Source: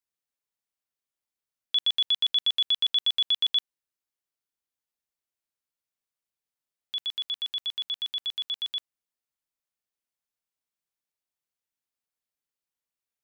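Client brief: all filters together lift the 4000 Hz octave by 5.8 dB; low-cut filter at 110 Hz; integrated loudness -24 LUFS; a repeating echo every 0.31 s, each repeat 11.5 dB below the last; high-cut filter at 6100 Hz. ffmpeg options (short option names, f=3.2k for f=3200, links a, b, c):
-af "highpass=110,lowpass=6.1k,equalizer=f=4k:t=o:g=7.5,aecho=1:1:310|620|930:0.266|0.0718|0.0194,volume=-4.5dB"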